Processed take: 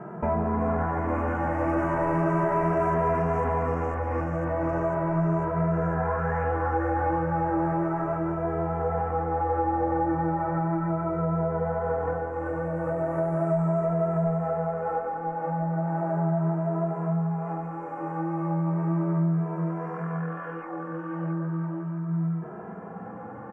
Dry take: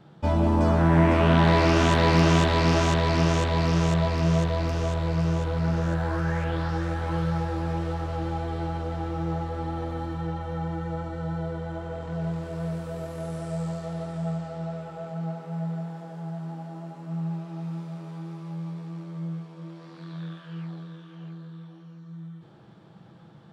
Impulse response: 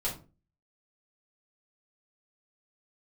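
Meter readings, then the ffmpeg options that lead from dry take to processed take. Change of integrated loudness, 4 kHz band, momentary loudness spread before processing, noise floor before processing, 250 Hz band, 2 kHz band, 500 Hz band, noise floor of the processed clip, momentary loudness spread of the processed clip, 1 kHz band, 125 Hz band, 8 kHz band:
−1.0 dB, below −25 dB, 19 LU, −49 dBFS, −0.5 dB, −3.5 dB, +2.5 dB, −38 dBFS, 7 LU, +3.0 dB, −2.5 dB, below −20 dB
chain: -filter_complex "[0:a]acontrast=80,highshelf=frequency=3000:gain=-10.5,asplit=2[link_01][link_02];[link_02]highpass=frequency=720:poles=1,volume=22dB,asoftclip=type=tanh:threshold=-2.5dB[link_03];[link_01][link_03]amix=inputs=2:normalize=0,lowpass=frequency=1000:poles=1,volume=-6dB,asuperstop=centerf=3900:order=4:qfactor=0.7,bandreject=frequency=50:width_type=h:width=6,bandreject=frequency=100:width_type=h:width=6,bandreject=frequency=150:width_type=h:width=6,bandreject=frequency=200:width_type=h:width=6,bandreject=frequency=250:width_type=h:width=6,bandreject=frequency=300:width_type=h:width=6,bandreject=frequency=350:width_type=h:width=6,bandreject=frequency=400:width_type=h:width=6,bandreject=frequency=450:width_type=h:width=6,bandreject=frequency=500:width_type=h:width=6,acompressor=threshold=-24dB:ratio=6,asplit=2[link_04][link_05];[link_05]adelay=2.6,afreqshift=0.36[link_06];[link_04][link_06]amix=inputs=2:normalize=1,volume=3dB"

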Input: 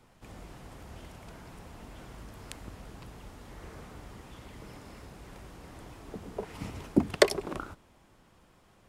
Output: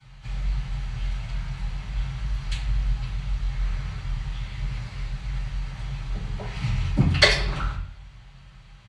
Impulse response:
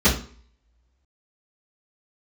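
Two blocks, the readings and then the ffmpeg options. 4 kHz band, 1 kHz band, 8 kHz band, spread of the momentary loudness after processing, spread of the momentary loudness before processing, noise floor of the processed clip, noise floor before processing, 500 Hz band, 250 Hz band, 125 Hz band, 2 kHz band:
+12.5 dB, +5.0 dB, +4.0 dB, 11 LU, 20 LU, −48 dBFS, −62 dBFS, −1.5 dB, +1.5 dB, +17.0 dB, +11.5 dB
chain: -filter_complex "[0:a]firequalizer=gain_entry='entry(130,0);entry(270,-18);entry(680,-5);entry(2000,6);entry(5900,9);entry(13000,-12)':delay=0.05:min_phase=1[link_01];[1:a]atrim=start_sample=2205,asetrate=29547,aresample=44100[link_02];[link_01][link_02]afir=irnorm=-1:irlink=0,volume=-14.5dB"

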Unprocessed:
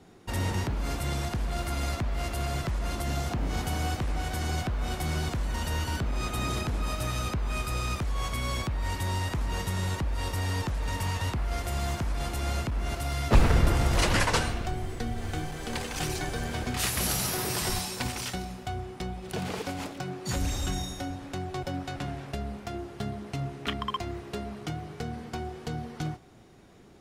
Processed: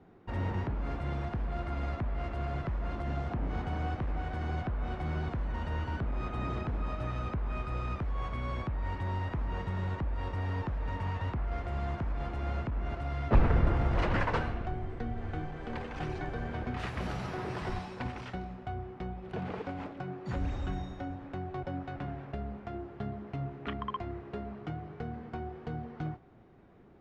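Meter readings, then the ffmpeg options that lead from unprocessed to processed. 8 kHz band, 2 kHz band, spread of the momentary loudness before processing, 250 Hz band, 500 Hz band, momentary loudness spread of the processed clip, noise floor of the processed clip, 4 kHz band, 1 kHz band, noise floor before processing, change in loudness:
below −25 dB, −7.0 dB, 10 LU, −3.5 dB, −3.5 dB, 7 LU, −49 dBFS, −15.5 dB, −4.0 dB, −45 dBFS, −4.5 dB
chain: -af "lowpass=1800,volume=-3.5dB"

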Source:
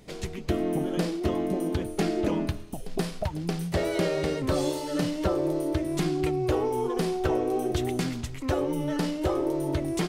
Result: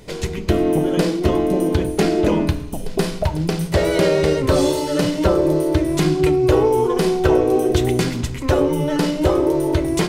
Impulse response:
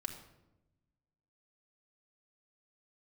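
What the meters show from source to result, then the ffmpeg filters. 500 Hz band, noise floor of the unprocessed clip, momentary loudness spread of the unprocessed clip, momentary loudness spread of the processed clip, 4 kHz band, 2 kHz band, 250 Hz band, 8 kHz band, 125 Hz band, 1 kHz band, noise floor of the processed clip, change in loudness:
+11.0 dB, −38 dBFS, 5 LU, 6 LU, +9.5 dB, +9.5 dB, +9.0 dB, +9.5 dB, +10.0 dB, +8.5 dB, −28 dBFS, +10.0 dB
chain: -filter_complex "[0:a]asplit=2[link_01][link_02];[1:a]atrim=start_sample=2205,asetrate=74970,aresample=44100[link_03];[link_02][link_03]afir=irnorm=-1:irlink=0,volume=4.5dB[link_04];[link_01][link_04]amix=inputs=2:normalize=0,volume=4.5dB"

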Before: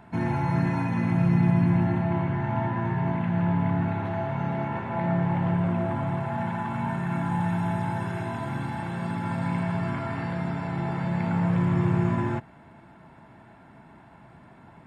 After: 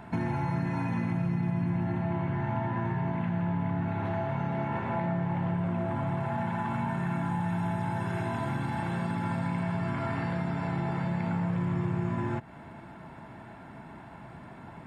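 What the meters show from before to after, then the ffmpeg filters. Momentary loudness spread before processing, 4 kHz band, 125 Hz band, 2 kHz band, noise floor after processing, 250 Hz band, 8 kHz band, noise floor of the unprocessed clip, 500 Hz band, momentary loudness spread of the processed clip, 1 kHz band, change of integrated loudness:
8 LU, −2.5 dB, −4.5 dB, −3.0 dB, −47 dBFS, −4.5 dB, can't be measured, −51 dBFS, −3.5 dB, 17 LU, −3.0 dB, −4.5 dB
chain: -af "acompressor=threshold=-33dB:ratio=4,volume=4.5dB"

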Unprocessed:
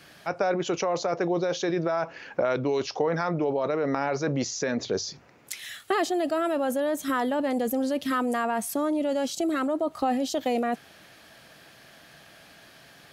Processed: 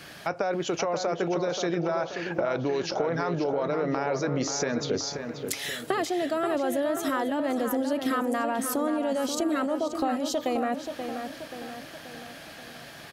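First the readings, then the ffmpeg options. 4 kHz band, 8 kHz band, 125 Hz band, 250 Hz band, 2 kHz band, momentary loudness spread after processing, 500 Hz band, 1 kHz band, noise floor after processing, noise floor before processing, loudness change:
+1.0 dB, +1.5 dB, 0.0 dB, −0.5 dB, 0.0 dB, 12 LU, −1.0 dB, −1.0 dB, −45 dBFS, −53 dBFS, −1.0 dB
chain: -filter_complex "[0:a]acompressor=threshold=-34dB:ratio=3,asplit=2[link_01][link_02];[link_02]adelay=531,lowpass=frequency=3300:poles=1,volume=-7dB,asplit=2[link_03][link_04];[link_04]adelay=531,lowpass=frequency=3300:poles=1,volume=0.53,asplit=2[link_05][link_06];[link_06]adelay=531,lowpass=frequency=3300:poles=1,volume=0.53,asplit=2[link_07][link_08];[link_08]adelay=531,lowpass=frequency=3300:poles=1,volume=0.53,asplit=2[link_09][link_10];[link_10]adelay=531,lowpass=frequency=3300:poles=1,volume=0.53,asplit=2[link_11][link_12];[link_12]adelay=531,lowpass=frequency=3300:poles=1,volume=0.53[link_13];[link_03][link_05][link_07][link_09][link_11][link_13]amix=inputs=6:normalize=0[link_14];[link_01][link_14]amix=inputs=2:normalize=0,volume=6.5dB"

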